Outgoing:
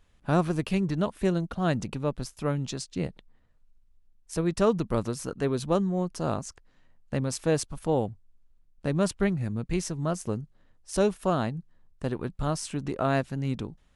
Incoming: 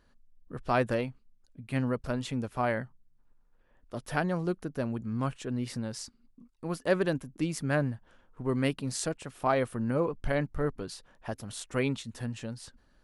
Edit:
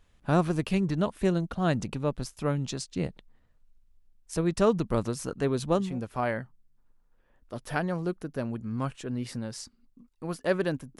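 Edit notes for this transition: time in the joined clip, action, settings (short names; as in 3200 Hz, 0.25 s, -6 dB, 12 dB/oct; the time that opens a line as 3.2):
outgoing
5.87 switch to incoming from 2.28 s, crossfade 0.28 s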